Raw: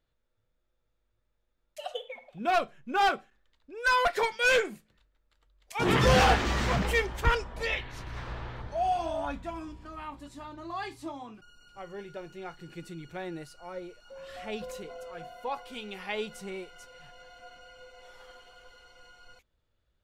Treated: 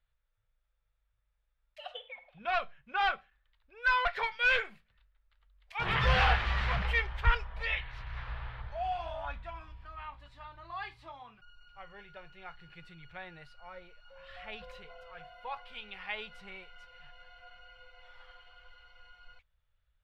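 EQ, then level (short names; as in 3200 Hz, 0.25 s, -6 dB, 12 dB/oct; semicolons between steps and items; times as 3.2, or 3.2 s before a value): air absorption 400 m; passive tone stack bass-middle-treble 10-0-10; +7.5 dB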